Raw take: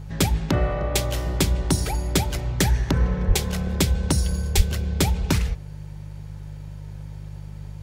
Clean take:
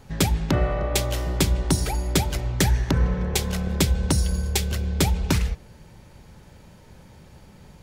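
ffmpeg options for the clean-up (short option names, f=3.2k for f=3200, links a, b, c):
-filter_complex "[0:a]bandreject=f=50.3:t=h:w=4,bandreject=f=100.6:t=h:w=4,bandreject=f=150.9:t=h:w=4,asplit=3[a][b][c];[a]afade=t=out:st=3.27:d=0.02[d];[b]highpass=f=140:w=0.5412,highpass=f=140:w=1.3066,afade=t=in:st=3.27:d=0.02,afade=t=out:st=3.39:d=0.02[e];[c]afade=t=in:st=3.39:d=0.02[f];[d][e][f]amix=inputs=3:normalize=0,asplit=3[g][h][i];[g]afade=t=out:st=4.56:d=0.02[j];[h]highpass=f=140:w=0.5412,highpass=f=140:w=1.3066,afade=t=in:st=4.56:d=0.02,afade=t=out:st=4.68:d=0.02[k];[i]afade=t=in:st=4.68:d=0.02[l];[j][k][l]amix=inputs=3:normalize=0"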